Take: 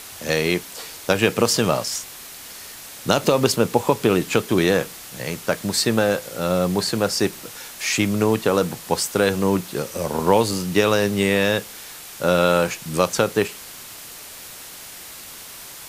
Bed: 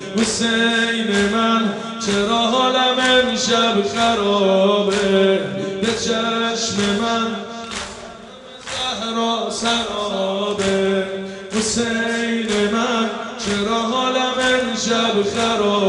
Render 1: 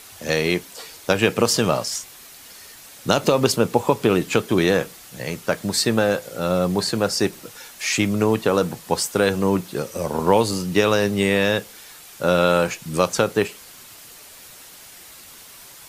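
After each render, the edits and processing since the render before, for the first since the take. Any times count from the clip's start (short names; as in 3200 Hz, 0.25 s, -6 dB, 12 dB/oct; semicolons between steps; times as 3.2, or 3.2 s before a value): denoiser 6 dB, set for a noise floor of -39 dBFS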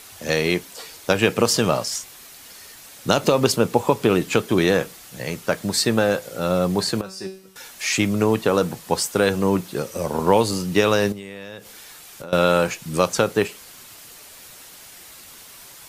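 7.01–7.56 resonator 190 Hz, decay 0.44 s, mix 90%; 11.12–12.33 compressor 8:1, threshold -32 dBFS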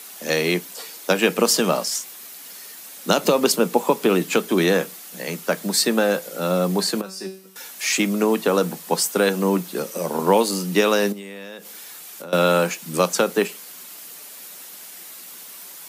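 steep high-pass 160 Hz 72 dB/oct; high shelf 12000 Hz +11.5 dB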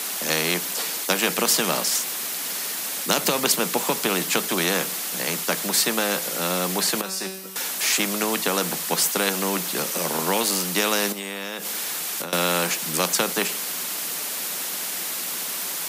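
spectral compressor 2:1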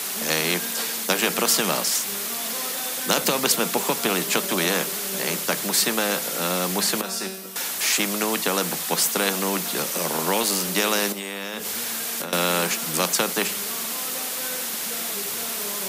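add bed -21 dB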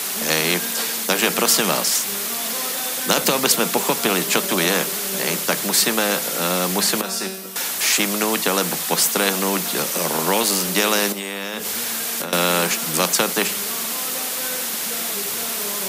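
gain +3.5 dB; limiter -1 dBFS, peak gain reduction 1.5 dB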